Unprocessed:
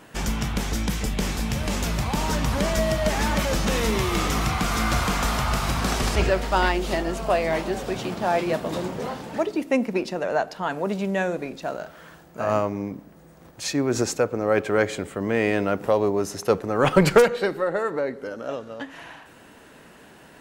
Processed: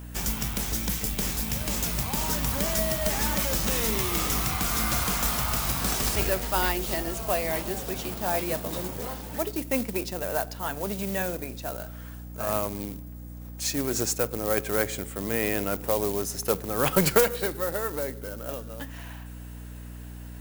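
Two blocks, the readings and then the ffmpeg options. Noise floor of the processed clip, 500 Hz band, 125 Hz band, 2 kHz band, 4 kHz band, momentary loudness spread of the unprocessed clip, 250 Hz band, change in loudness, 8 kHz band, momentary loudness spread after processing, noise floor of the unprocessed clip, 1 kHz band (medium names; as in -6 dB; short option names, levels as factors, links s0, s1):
-40 dBFS, -6.0 dB, -5.0 dB, -5.0 dB, -1.5 dB, 10 LU, -6.0 dB, -2.5 dB, +3.5 dB, 14 LU, -49 dBFS, -6.0 dB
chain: -af "acrusher=bits=4:mode=log:mix=0:aa=0.000001,aemphasis=mode=production:type=50fm,aeval=exprs='val(0)+0.0224*(sin(2*PI*60*n/s)+sin(2*PI*2*60*n/s)/2+sin(2*PI*3*60*n/s)/3+sin(2*PI*4*60*n/s)/4+sin(2*PI*5*60*n/s)/5)':c=same,volume=0.501"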